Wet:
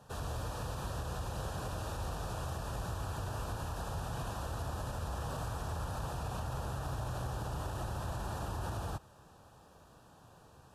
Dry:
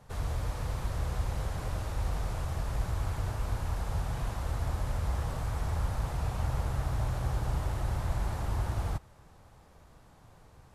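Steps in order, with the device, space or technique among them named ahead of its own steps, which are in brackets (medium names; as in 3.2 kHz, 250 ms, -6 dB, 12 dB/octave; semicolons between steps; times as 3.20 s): PA system with an anti-feedback notch (high-pass 140 Hz 6 dB/octave; Butterworth band-stop 2.1 kHz, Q 3.3; peak limiter -30.5 dBFS, peak gain reduction 5 dB); trim +1 dB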